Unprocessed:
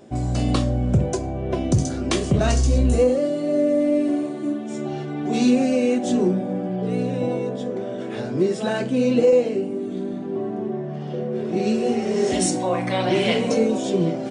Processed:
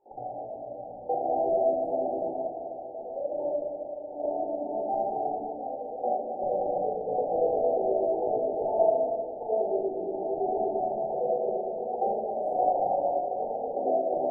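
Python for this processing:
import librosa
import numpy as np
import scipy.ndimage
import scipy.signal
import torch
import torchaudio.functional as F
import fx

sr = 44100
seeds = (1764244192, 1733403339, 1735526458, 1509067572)

y = fx.high_shelf(x, sr, hz=4700.0, db=-10.5)
y = fx.over_compress(y, sr, threshold_db=-25.0, ratio=-0.5)
y = fx.doubler(y, sr, ms=18.0, db=-7.0)
y = fx.filter_lfo_highpass(y, sr, shape='square', hz=8.7, low_hz=660.0, high_hz=1600.0, q=4.1)
y = fx.brickwall_bandstop(y, sr, low_hz=910.0, high_hz=9000.0)
y = fx.air_absorb(y, sr, metres=390.0)
y = fx.echo_banded(y, sr, ms=725, feedback_pct=46, hz=910.0, wet_db=-10.0)
y = fx.room_shoebox(y, sr, seeds[0], volume_m3=1300.0, walls='mixed', distance_m=4.1)
y = y * 10.0 ** (-9.0 / 20.0)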